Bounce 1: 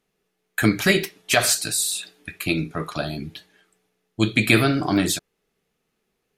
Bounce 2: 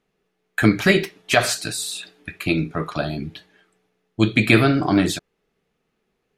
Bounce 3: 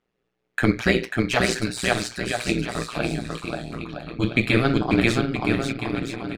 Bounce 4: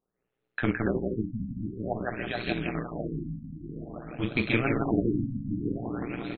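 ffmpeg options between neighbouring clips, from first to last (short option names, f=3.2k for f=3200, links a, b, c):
-af "lowpass=f=3k:p=1,volume=3dB"
-af "aecho=1:1:540|972|1318|1594|1815:0.631|0.398|0.251|0.158|0.1,adynamicsmooth=sensitivity=5.5:basefreq=7.5k,tremolo=f=120:d=0.857"
-af "acrusher=bits=3:mode=log:mix=0:aa=0.000001,aecho=1:1:166|332|498|664:0.708|0.227|0.0725|0.0232,afftfilt=real='re*lt(b*sr/1024,270*pow(4400/270,0.5+0.5*sin(2*PI*0.51*pts/sr)))':imag='im*lt(b*sr/1024,270*pow(4400/270,0.5+0.5*sin(2*PI*0.51*pts/sr)))':win_size=1024:overlap=0.75,volume=-7.5dB"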